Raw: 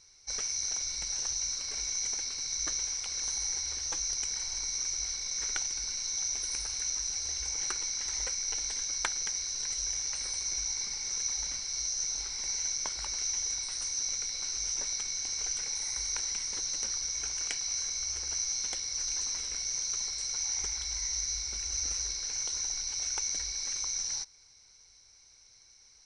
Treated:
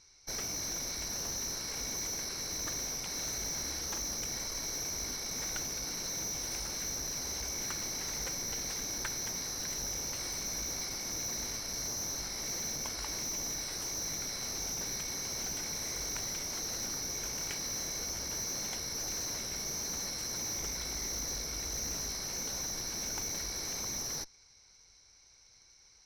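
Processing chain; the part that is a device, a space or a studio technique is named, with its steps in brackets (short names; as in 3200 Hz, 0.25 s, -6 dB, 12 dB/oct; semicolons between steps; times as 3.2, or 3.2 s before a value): 3.06–4.01 doubler 41 ms -7 dB; tube preamp driven hard (tube stage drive 36 dB, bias 0.8; high shelf 3900 Hz -6 dB); gain +6.5 dB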